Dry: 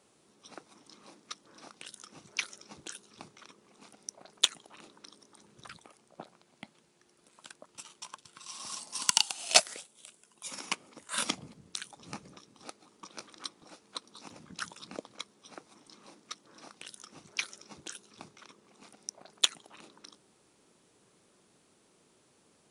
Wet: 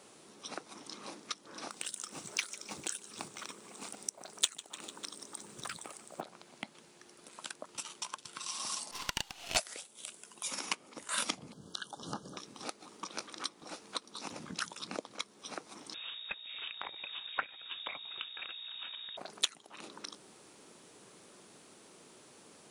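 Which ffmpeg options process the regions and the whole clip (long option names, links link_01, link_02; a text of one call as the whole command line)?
ffmpeg -i in.wav -filter_complex "[0:a]asettb=1/sr,asplit=3[link_01][link_02][link_03];[link_01]atrim=end=1.704[link_04];[link_02]atrim=start=1.7:end=6.21,asetpts=PTS-STARTPTS,afade=type=in:duration=0.004:curve=qsin,afade=type=out:start_time=4.506:duration=0.004:curve=qsin,equalizer=frequency=8100:width=2.7:gain=11,acrusher=bits=5:mode=log:mix=0:aa=0.000001,aecho=1:1:149|298|447|596:0.0944|0.05|0.0265|0.0141,atrim=end_sample=198891[link_05];[link_03]atrim=start=6.206[link_06];[link_04][link_05]acrossfade=duration=0.004:curve1=hsin:curve2=qsin[link_07];[link_07][link_06]acrossfade=duration=0.004:curve1=qsin:curve2=hsin,asettb=1/sr,asplit=3[link_08][link_09][link_10];[link_08]atrim=end=8.914[link_11];[link_09]atrim=start=8.91:end=9.57,asetpts=PTS-STARTPTS,afade=type=in:duration=0.004:curve=qsin,afade=type=out:start_time=0.656:duration=0.004:curve=qsin,lowpass=3600,aeval=exprs='max(val(0),0)':channel_layout=same[link_12];[link_10]atrim=start=9.566[link_13];[link_11][link_12]acrossfade=duration=0.004:curve1=hsin:curve2=qsin[link_14];[link_14][link_13]acrossfade=duration=0.004:curve1=qsin:curve2=hsin,asettb=1/sr,asplit=3[link_15][link_16][link_17];[link_15]atrim=end=11.524[link_18];[link_16]atrim=start=11.52:end=12.37,asetpts=PTS-STARTPTS,afade=type=in:duration=0.004:curve=qsin,afade=type=out:start_time=0.846:duration=0.004:curve=qsin,acrossover=split=3900[link_19][link_20];[link_20]acompressor=threshold=-55dB:ratio=4:attack=1:release=60[link_21];[link_19][link_21]amix=inputs=2:normalize=0,asuperstop=centerf=2200:order=20:qfactor=1.9[link_22];[link_17]atrim=start=12.366[link_23];[link_18][link_22]acrossfade=duration=0.004:curve1=hsin:curve2=qsin[link_24];[link_24][link_23]acrossfade=duration=0.004:curve1=qsin:curve2=hsin,asettb=1/sr,asplit=3[link_25][link_26][link_27];[link_25]atrim=end=15.944[link_28];[link_26]atrim=start=15.94:end=19.17,asetpts=PTS-STARTPTS,afade=type=in:duration=0.004:curve=qsin,afade=type=out:start_time=3.226:duration=0.004:curve=qsin,equalizer=frequency=1500:width_type=o:width=2.2:gain=3,aeval=exprs='val(0)+0.002*(sin(2*PI*60*n/s)+sin(2*PI*2*60*n/s)/2+sin(2*PI*3*60*n/s)/3+sin(2*PI*4*60*n/s)/4+sin(2*PI*5*60*n/s)/5)':channel_layout=same,lowpass=frequency=3200:width_type=q:width=0.5098,lowpass=frequency=3200:width_type=q:width=0.6013,lowpass=frequency=3200:width_type=q:width=0.9,lowpass=frequency=3200:width_type=q:width=2.563,afreqshift=-3800[link_29];[link_27]atrim=start=19.166[link_30];[link_28][link_29]acrossfade=duration=0.004:curve1=hsin:curve2=qsin[link_31];[link_31][link_30]acrossfade=duration=0.004:curve1=qsin:curve2=hsin,lowshelf=frequency=110:gain=-11.5,acompressor=threshold=-50dB:ratio=2,volume=9.5dB" out.wav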